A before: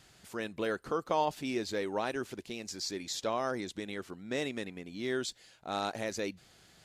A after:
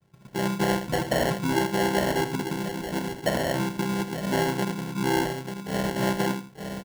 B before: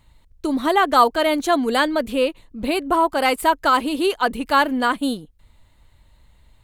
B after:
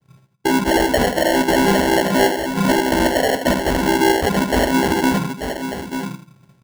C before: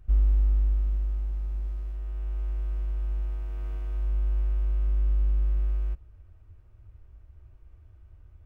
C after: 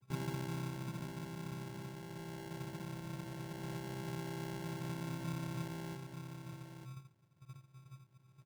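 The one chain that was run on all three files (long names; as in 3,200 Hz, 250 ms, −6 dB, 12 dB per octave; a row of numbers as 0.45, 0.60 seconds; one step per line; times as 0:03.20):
channel vocoder with a chord as carrier major triad, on C3
treble cut that deepens with the level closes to 1,100 Hz, closed at −15.5 dBFS
in parallel at +2.5 dB: downward compressor, threshold −31 dBFS
on the sum: noise gate −53 dBFS, range −12 dB
feedback echo with a low-pass in the loop 82 ms, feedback 22%, low-pass 970 Hz, level −8 dB
soft clipping −11 dBFS
low-shelf EQ 150 Hz +10.5 dB
on a send: single-tap delay 891 ms −7.5 dB
on the sum: decimation without filtering 36×
dynamic equaliser 1,100 Hz, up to +4 dB, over −32 dBFS, Q 1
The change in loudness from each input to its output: +9.0, +2.0, −14.0 LU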